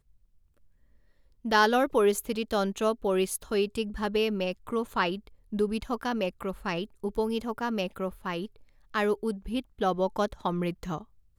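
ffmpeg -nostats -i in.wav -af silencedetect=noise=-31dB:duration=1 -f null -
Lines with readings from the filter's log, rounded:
silence_start: 0.00
silence_end: 1.45 | silence_duration: 1.45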